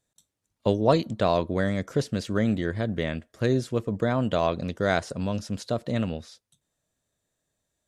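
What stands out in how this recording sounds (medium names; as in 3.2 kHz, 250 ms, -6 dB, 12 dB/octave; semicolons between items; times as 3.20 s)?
noise floor -81 dBFS; spectral tilt -6.0 dB/octave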